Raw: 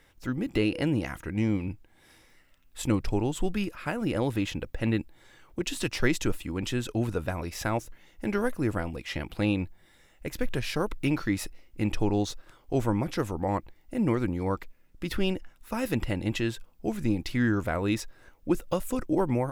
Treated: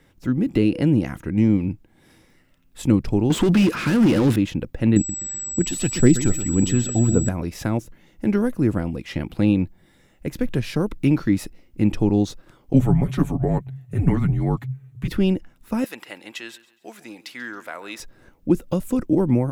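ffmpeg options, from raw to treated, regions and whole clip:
-filter_complex "[0:a]asettb=1/sr,asplit=3[a][b][c];[a]atrim=end=3.304[d];[b]atrim=start=3.3:end=4.36,asetpts=PTS-STARTPTS,afade=t=in:d=0.004:c=qsin,afade=t=out:st=1.056:d=0.004:c=qsin,equalizer=f=660:w=2.2:g=-12.5,asplit=2[e][f];[f]highpass=f=720:p=1,volume=33dB,asoftclip=type=tanh:threshold=-16.5dB[g];[e][g]amix=inputs=2:normalize=0,lowpass=f=3.4k:p=1,volume=-6dB[h];[c]atrim=start=4.356[i];[d][h]acrossfade=d=0.004:c1=hsin:c2=qsin[j];[j][i]acrossfade=d=0.004:c1=qsin:c2=hsin,asettb=1/sr,asplit=3[k][l][m];[k]atrim=end=4.964[n];[l]atrim=start=4.96:end=7.29,asetpts=PTS-STARTPTS,afade=t=in:d=0.004:c=qsin,afade=t=out:st=2.326:d=0.004:c=qsin,aecho=1:1:126|252|378|504:0.299|0.11|0.0409|0.0151,atrim=end_sample=102753,aphaser=in_gain=1:out_gain=1:delay=1.7:decay=0.46:speed=1.8:type=triangular,aeval=exprs='val(0)+0.0398*sin(2*PI*7800*n/s)':c=same[o];[m]atrim=start=7.286[p];[n][o]acrossfade=d=0.004:c1=hsin:c2=qsin[q];[q][p]acrossfade=d=0.004:c1=qsin:c2=hsin,asettb=1/sr,asplit=3[r][s][t];[r]atrim=end=12.734[u];[s]atrim=start=12.73:end=15.08,asetpts=PTS-STARTPTS,afade=t=in:d=0.004:c=qsin,afade=t=out:st=2.346:d=0.004:c=qsin,equalizer=f=5.1k:w=5.5:g=-12.5,afreqshift=-140,aecho=1:1:7.1:0.71,atrim=end_sample=103635[v];[t]atrim=start=15.076[w];[u][v]acrossfade=d=0.004:c1=hsin:c2=qsin[x];[x][w]acrossfade=d=0.004:c1=qsin:c2=hsin,asettb=1/sr,asplit=3[y][z][aa];[y]atrim=end=15.844[ab];[z]atrim=start=15.84:end=18,asetpts=PTS-STARTPTS,afade=t=in:d=0.004:c=qsin,afade=t=out:st=2.156:d=0.004:c=qsin,highpass=980,aecho=1:1:137|274|411:0.119|0.0452|0.0172,atrim=end_sample=95256[ac];[aa]atrim=start=17.996[ad];[ab][ac]acrossfade=d=0.004:c1=hsin:c2=qsin[ae];[ae][ad]acrossfade=d=0.004:c1=qsin:c2=hsin,equalizer=f=190:t=o:w=2.4:g=11,acrossover=split=470|3000[af][ag][ah];[ag]acompressor=threshold=-28dB:ratio=6[ai];[af][ai][ah]amix=inputs=3:normalize=0"

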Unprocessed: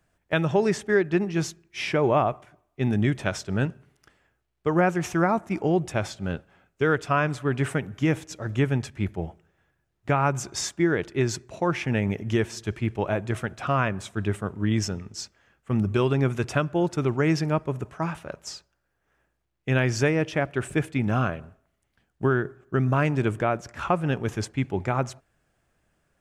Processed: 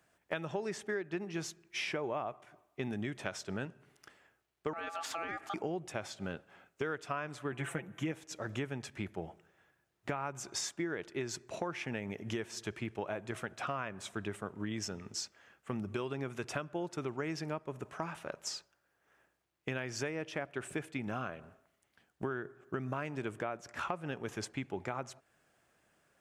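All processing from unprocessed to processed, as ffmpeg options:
-filter_complex "[0:a]asettb=1/sr,asplit=3[a][b][c];[a]atrim=end=4.734[d];[b]atrim=start=4.73:end=5.54,asetpts=PTS-STARTPTS,afade=t=in:d=0.004:c=qsin,afade=t=out:st=0.806:d=0.004:c=qsin,equalizer=f=3.6k:t=o:w=1.5:g=6.5,acompressor=threshold=-32dB:ratio=2.5:attack=3.2:release=140:knee=1:detection=peak,aeval=exprs='val(0)*sin(2*PI*1000*n/s)':c=same[e];[c]atrim=start=5.536[f];[d][e]acrossfade=d=0.004:c1=hsin:c2=qsin[g];[g][f]acrossfade=d=0.004:c1=qsin:c2=hsin,asettb=1/sr,asplit=3[h][i][j];[h]atrim=end=7.524[k];[i]atrim=start=7.52:end=8.12,asetpts=PTS-STARTPTS,afade=t=in:d=0.004:c=qsin,afade=t=out:st=0.596:d=0.004:c=qsin,equalizer=f=4.8k:t=o:w=0.46:g=-12.5,aecho=1:1:5.9:0.74,atrim=end_sample=26460[l];[j]atrim=start=8.116[m];[k][l]acrossfade=d=0.004:c1=hsin:c2=qsin[n];[n][m]acrossfade=d=0.004:c1=qsin:c2=hsin,highpass=f=310:p=1,acompressor=threshold=-38dB:ratio=4,volume=1.5dB"

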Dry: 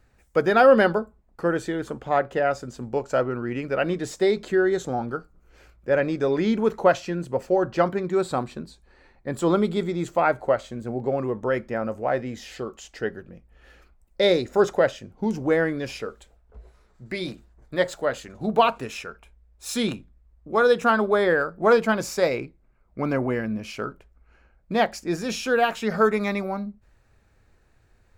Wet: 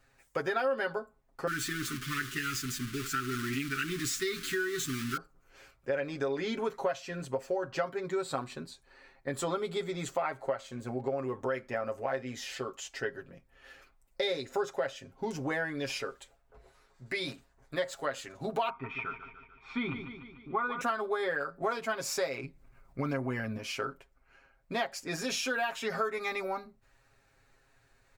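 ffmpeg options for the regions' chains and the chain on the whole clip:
-filter_complex "[0:a]asettb=1/sr,asplit=3[a][b][c];[a]atrim=end=1.474[d];[b]atrim=start=1.47:end=5.17,asetpts=PTS-STARTPTS,afade=t=in:d=0.004:c=qsin,afade=t=out:st=3.696:d=0.004:c=qsin,aeval=exprs='val(0)+0.5*0.0398*sgn(val(0))':c=same,agate=range=-33dB:threshold=-29dB:ratio=3:release=100:detection=peak,asuperstop=centerf=660:order=12:qfactor=0.81[e];[c]atrim=start=5.166[f];[d][e]acrossfade=d=0.004:c1=hsin:c2=qsin[g];[g][f]acrossfade=d=0.004:c1=qsin:c2=hsin,asettb=1/sr,asplit=3[h][i][j];[h]atrim=end=18.694[k];[i]atrim=start=18.69:end=20.81,asetpts=PTS-STARTPTS,afade=t=in:d=0.004:c=qsin,afade=t=out:st=2.116:d=0.004:c=qsin,lowpass=f=2.3k:w=0.5412,lowpass=f=2.3k:w=1.3066,aecho=1:1:0.9:0.79,atrim=end_sample=93492,aecho=1:1:147|294|441|588|735|882:0.251|0.141|0.0788|0.0441|0.0247|0.0138,atrim=end_sample=93492[l];[j]atrim=start=20.806[m];[k][l]acrossfade=d=0.004:c1=hsin:c2=qsin[n];[n][m]acrossfade=d=0.004:c1=qsin:c2=hsin,asettb=1/sr,asplit=3[o][p][q];[o]atrim=end=22.434[r];[p]atrim=start=22.43:end=23.58,asetpts=PTS-STARTPTS,afade=t=in:d=0.004:c=qsin,afade=t=out:st=1.146:d=0.004:c=qsin,bass=f=250:g=7,treble=f=4k:g=3,acompressor=mode=upward:threshold=-41dB:ratio=2.5:attack=3.2:release=140:knee=2.83:detection=peak[s];[q]atrim=start=23.576[t];[r][s]acrossfade=d=0.004:c1=hsin:c2=qsin[u];[u][t]acrossfade=d=0.004:c1=qsin:c2=hsin,lowshelf=f=490:g=-10,aecho=1:1:7.4:0.83,acompressor=threshold=-29dB:ratio=4,volume=-1dB"

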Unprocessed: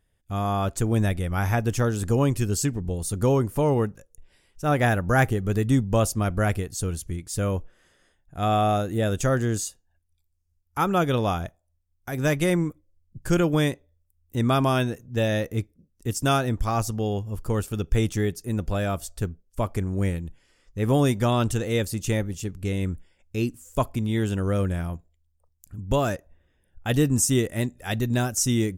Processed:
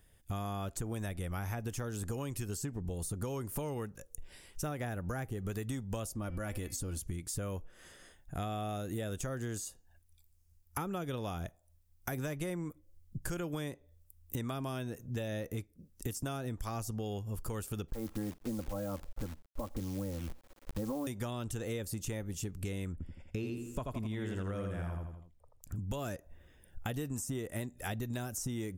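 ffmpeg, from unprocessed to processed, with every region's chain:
-filter_complex "[0:a]asettb=1/sr,asplit=3[a][b][c];[a]atrim=end=6.154[d];[b]atrim=start=6.15:end=6.98,asetpts=PTS-STARTPTS,afade=t=in:d=0.004:c=qsin,afade=t=out:st=0.826:d=0.004:c=qsin,aecho=1:1:3.5:0.45,atrim=end_sample=36603,bandreject=f=256.4:t=h:w=4,bandreject=f=512.8:t=h:w=4,bandreject=f=769.2:t=h:w=4,bandreject=f=1.0256k:t=h:w=4,bandreject=f=1.282k:t=h:w=4,bandreject=f=1.5384k:t=h:w=4,bandreject=f=1.7948k:t=h:w=4,bandreject=f=2.0512k:t=h:w=4,bandreject=f=2.3076k:t=h:w=4,bandreject=f=2.564k:t=h:w=4,bandreject=f=2.8204k:t=h:w=4,bandreject=f=3.0768k:t=h:w=4,bandreject=f=3.3332k:t=h:w=4,bandreject=f=3.5896k:t=h:w=4,bandreject=f=3.846k:t=h:w=4,bandreject=f=4.1024k:t=h:w=4,bandreject=f=4.3588k:t=h:w=4,bandreject=f=4.6152k:t=h:w=4,bandreject=f=4.8716k:t=h:w=4,bandreject=f=5.128k:t=h:w=4,acompressor=threshold=-28dB:ratio=6:attack=3.2:release=140:knee=1:detection=peak[e];[c]atrim=start=6.976[f];[d][e]acrossfade=d=0.004:c1=hsin:c2=qsin[g];[g][f]acrossfade=d=0.004:c1=qsin:c2=hsin,asettb=1/sr,asplit=3[h][i][j];[h]atrim=end=17.884[k];[i]atrim=start=17.88:end=21.07,asetpts=PTS-STARTPTS,afade=t=in:d=0.004:c=qsin,afade=t=out:st=3.186:d=0.004:c=qsin,lowpass=f=1.1k:w=0.5412,lowpass=f=1.1k:w=1.3066,aecho=1:1:3.7:0.96,atrim=end_sample=140679,acrusher=bits=8:dc=4:mix=0:aa=0.000001[l];[j]atrim=start=21.066[m];[k][l]acrossfade=d=0.004:c1=hsin:c2=qsin[n];[n][m]acrossfade=d=0.004:c1=qsin:c2=hsin,asettb=1/sr,asplit=3[o][p][q];[o]atrim=end=22.924[r];[p]atrim=start=22.92:end=25.76,asetpts=PTS-STARTPTS,afade=t=in:d=0.004:c=qsin,afade=t=out:st=2.836:d=0.004:c=qsin,lowpass=f=1.8k:p=1,aecho=1:1:83|166|249|332:0.631|0.215|0.0729|0.0248,atrim=end_sample=125244[s];[q]atrim=start=25.756[t];[r][s]acrossfade=d=0.004:c1=hsin:c2=qsin[u];[u][t]acrossfade=d=0.004:c1=qsin:c2=hsin,acrossover=split=570|1400[v][w][x];[v]acompressor=threshold=-28dB:ratio=4[y];[w]acompressor=threshold=-37dB:ratio=4[z];[x]acompressor=threshold=-40dB:ratio=4[aa];[y][z][aa]amix=inputs=3:normalize=0,highshelf=f=7.5k:g=7.5,acompressor=threshold=-43dB:ratio=4,volume=5.5dB"

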